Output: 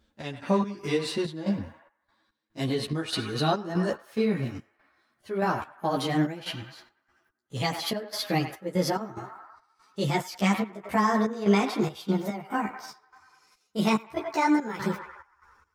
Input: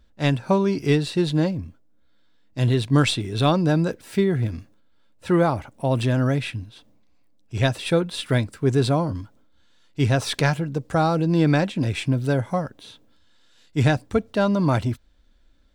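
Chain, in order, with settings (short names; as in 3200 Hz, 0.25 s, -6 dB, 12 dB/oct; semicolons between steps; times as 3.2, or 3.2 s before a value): gliding pitch shift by +7.5 st starting unshifted; on a send: narrowing echo 97 ms, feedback 72%, band-pass 1300 Hz, level -9.5 dB; on the sum: step gate "x.x.xx.x" 72 bpm -12 dB; in parallel at +1 dB: limiter -17 dBFS, peak gain reduction 10 dB; on the sum: HPF 160 Hz 6 dB/oct; ensemble effect; gain -4 dB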